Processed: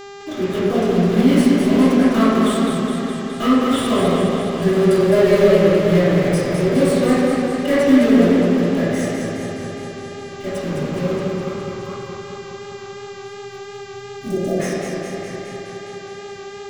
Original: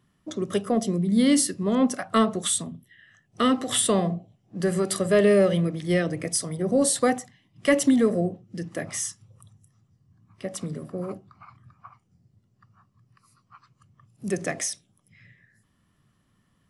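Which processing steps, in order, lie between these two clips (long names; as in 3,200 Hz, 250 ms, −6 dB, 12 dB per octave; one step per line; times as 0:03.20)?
one scale factor per block 3 bits
downward compressor 1.5 to 1, threshold −35 dBFS, peak gain reduction 7.5 dB
convolution reverb RT60 1.4 s, pre-delay 3 ms, DRR −15 dB
gain on a spectral selection 0:12.94–0:14.60, 760–5,300 Hz −25 dB
hum with harmonics 400 Hz, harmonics 19, −29 dBFS −6 dB per octave
feedback echo with a swinging delay time 208 ms, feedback 70%, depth 78 cents, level −5 dB
level −7.5 dB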